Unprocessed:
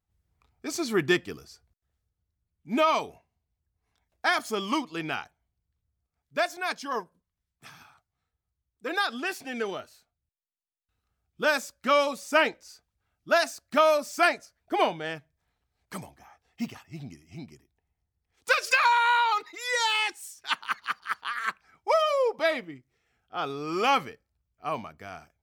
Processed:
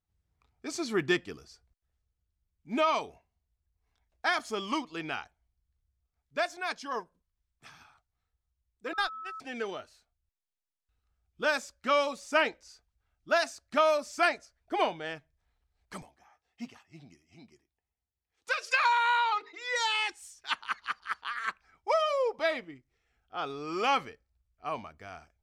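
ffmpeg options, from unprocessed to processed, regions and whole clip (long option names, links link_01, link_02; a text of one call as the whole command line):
ffmpeg -i in.wav -filter_complex "[0:a]asettb=1/sr,asplit=3[link_01][link_02][link_03];[link_01]atrim=end=8.934[link_04];[link_02]atrim=start=8.93:end=9.4,asetpts=PTS-STARTPTS,afade=type=in:duration=0.004:curve=qsin,afade=type=out:start_time=0.466:duration=0.004:curve=qsin,aeval=exprs='val(0)+0.5*0.00891*sgn(val(0))':channel_layout=same,agate=range=-34dB:threshold=-27dB:ratio=16:release=100:detection=peak,aeval=exprs='val(0)+0.0178*sin(2*PI*1300*n/s)':channel_layout=same[link_05];[link_03]atrim=start=9.396[link_06];[link_04][link_05]acrossfade=duration=0.004:curve1=hsin:curve2=qsin[link_07];[link_07][link_06]acrossfade=duration=0.004:curve1=qsin:curve2=hsin,asettb=1/sr,asplit=3[link_08][link_09][link_10];[link_08]atrim=end=16.024[link_11];[link_09]atrim=start=16.02:end=18.74,asetpts=PTS-STARTPTS,afade=type=in:duration=0.004:curve=qsin,afade=type=out:start_time=2.716:duration=0.004:curve=qsin,highpass=frequency=180:poles=1,flanger=delay=3.7:depth=3:regen=73:speed=1.5:shape=triangular[link_12];[link_10]atrim=start=18.736[link_13];[link_11][link_12]acrossfade=duration=0.004:curve1=hsin:curve2=qsin[link_14];[link_14][link_13]acrossfade=duration=0.004:curve1=qsin:curve2=hsin,asettb=1/sr,asplit=3[link_15][link_16][link_17];[link_15]atrim=end=19.294[link_18];[link_16]atrim=start=19.29:end=19.76,asetpts=PTS-STARTPTS,afade=type=in:duration=0.004:curve=qsin,afade=type=out:start_time=0.466:duration=0.004:curve=qsin,bandreject=frequency=50:width_type=h:width=6,bandreject=frequency=100:width_type=h:width=6,bandreject=frequency=150:width_type=h:width=6,bandreject=frequency=200:width_type=h:width=6,bandreject=frequency=250:width_type=h:width=6,bandreject=frequency=300:width_type=h:width=6,bandreject=frequency=350:width_type=h:width=6,bandreject=frequency=400:width_type=h:width=6,bandreject=frequency=450:width_type=h:width=6,acrusher=bits=7:mode=log:mix=0:aa=0.000001,highpass=110,lowpass=4400[link_19];[link_17]atrim=start=19.756[link_20];[link_18][link_19]acrossfade=duration=0.004:curve1=hsin:curve2=qsin[link_21];[link_21][link_20]acrossfade=duration=0.004:curve1=qsin:curve2=hsin,lowpass=8500,asubboost=boost=5:cutoff=56,volume=-3.5dB" out.wav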